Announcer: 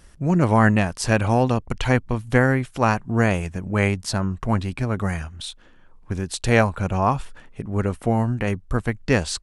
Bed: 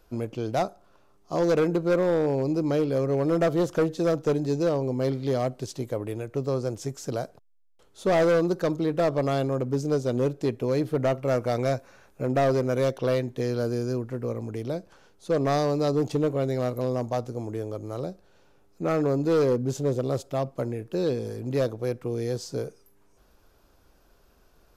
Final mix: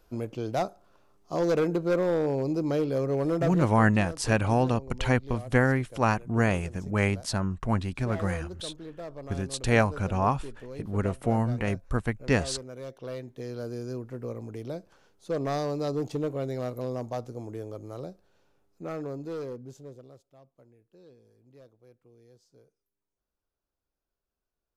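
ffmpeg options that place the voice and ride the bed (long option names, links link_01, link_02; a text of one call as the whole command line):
ffmpeg -i stem1.wav -i stem2.wav -filter_complex "[0:a]adelay=3200,volume=-5dB[link_01];[1:a]volume=8.5dB,afade=type=out:start_time=3.27:duration=0.47:silence=0.199526,afade=type=in:start_time=12.8:duration=1.44:silence=0.281838,afade=type=out:start_time=17.79:duration=2.44:silence=0.0707946[link_02];[link_01][link_02]amix=inputs=2:normalize=0" out.wav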